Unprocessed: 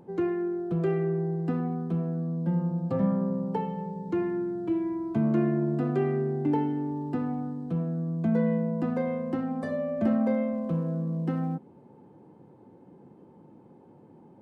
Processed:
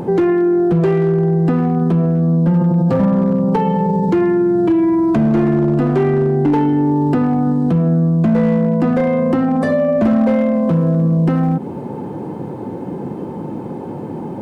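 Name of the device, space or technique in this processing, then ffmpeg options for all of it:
loud club master: -af "acompressor=threshold=-32dB:ratio=2,asoftclip=type=hard:threshold=-26.5dB,alimiter=level_in=35dB:limit=-1dB:release=50:level=0:latency=1,volume=-8dB"

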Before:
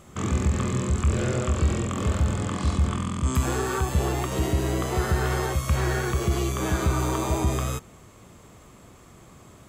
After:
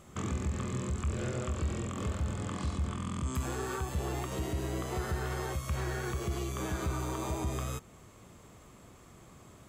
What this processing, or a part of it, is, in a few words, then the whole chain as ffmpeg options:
clipper into limiter: -af "asoftclip=type=hard:threshold=-15dB,alimiter=limit=-20.5dB:level=0:latency=1:release=346,volume=-5dB"

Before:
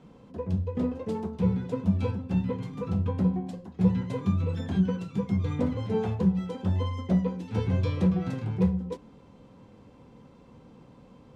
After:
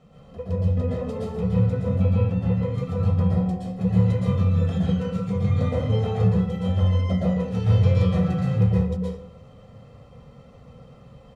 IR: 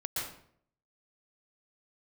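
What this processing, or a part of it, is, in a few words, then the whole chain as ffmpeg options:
microphone above a desk: -filter_complex "[0:a]aecho=1:1:1.6:0.74[link_01];[1:a]atrim=start_sample=2205[link_02];[link_01][link_02]afir=irnorm=-1:irlink=0,asettb=1/sr,asplit=3[link_03][link_04][link_05];[link_03]atrim=end=1.794[link_06];[link_04]atrim=start=1.79:end=2.78,asetpts=PTS-STARTPTS,afade=type=in:duration=0.004:curve=qsin,afade=type=out:start_time=0.986:duration=0.004:curve=qsin,acrossover=split=2800[link_07][link_08];[link_08]acompressor=threshold=-57dB:ratio=4:attack=1:release=60[link_09];[link_07][link_09]amix=inputs=2:normalize=0[link_10];[link_05]atrim=start=2.776[link_11];[link_06][link_10]acrossfade=duration=0.004:curve1=hsin:curve2=qsin[link_12];[link_12][link_11]acrossfade=duration=0.004:curve1=qsin:curve2=hsin"

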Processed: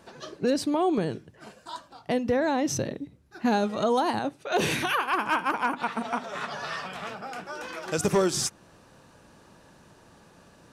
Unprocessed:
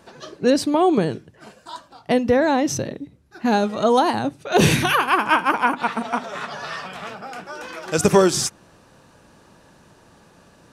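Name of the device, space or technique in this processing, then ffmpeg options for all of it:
clipper into limiter: -filter_complex "[0:a]asettb=1/sr,asplit=3[link_01][link_02][link_03];[link_01]atrim=end=4.194[link_04];[link_02]atrim=start=4.19:end=5.15,asetpts=PTS-STARTPTS,afade=type=in:duration=0.004:curve=qsin,afade=type=out:start_time=0.956:duration=0.004:curve=qsin,bass=frequency=250:gain=-10,treble=frequency=4000:gain=-3[link_05];[link_03]atrim=start=5.146[link_06];[link_04][link_05]acrossfade=duration=0.004:curve1=hsin:curve2=qsin[link_07];[link_07][link_06]acrossfade=duration=0.004:curve1=qsin:curve2=hsin,asoftclip=type=hard:threshold=-8dB,alimiter=limit=-13dB:level=0:latency=1:release=297,volume=-3dB"

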